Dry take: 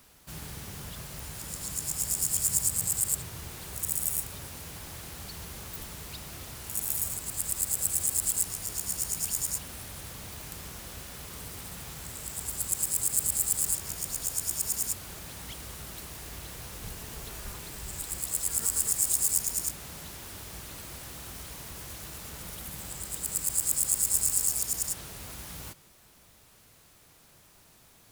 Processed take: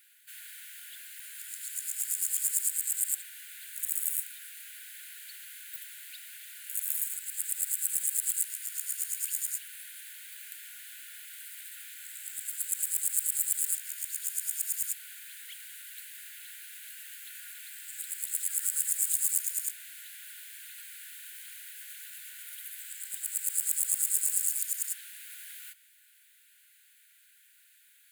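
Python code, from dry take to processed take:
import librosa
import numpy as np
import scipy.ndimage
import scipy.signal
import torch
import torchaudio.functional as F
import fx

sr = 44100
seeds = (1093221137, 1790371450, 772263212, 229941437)

y = fx.brickwall_highpass(x, sr, low_hz=1400.0)
y = fx.peak_eq(y, sr, hz=5500.0, db=-14.0, octaves=0.53)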